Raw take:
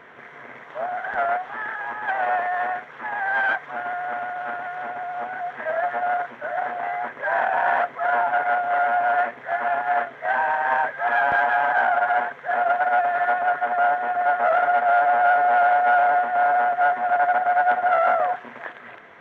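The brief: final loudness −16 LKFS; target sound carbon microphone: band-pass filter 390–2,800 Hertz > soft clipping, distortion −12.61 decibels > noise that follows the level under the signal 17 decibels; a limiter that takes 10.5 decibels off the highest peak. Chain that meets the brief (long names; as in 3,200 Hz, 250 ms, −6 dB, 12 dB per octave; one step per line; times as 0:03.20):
brickwall limiter −19 dBFS
band-pass filter 390–2,800 Hz
soft clipping −27 dBFS
noise that follows the level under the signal 17 dB
level +15 dB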